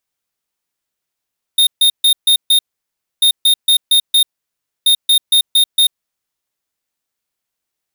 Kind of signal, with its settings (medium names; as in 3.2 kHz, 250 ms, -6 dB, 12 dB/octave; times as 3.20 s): beep pattern square 3.68 kHz, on 0.09 s, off 0.14 s, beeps 5, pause 0.63 s, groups 3, -10 dBFS